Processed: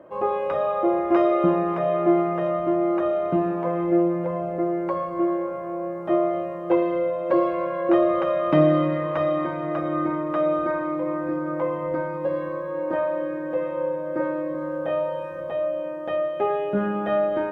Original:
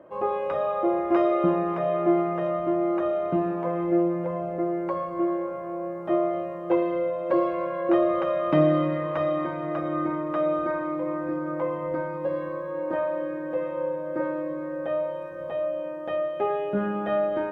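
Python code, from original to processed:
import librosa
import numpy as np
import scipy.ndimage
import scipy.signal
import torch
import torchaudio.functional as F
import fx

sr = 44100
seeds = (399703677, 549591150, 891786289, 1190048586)

y = fx.doubler(x, sr, ms=25.0, db=-2.5, at=(14.52, 15.4))
y = y * 10.0 ** (2.5 / 20.0)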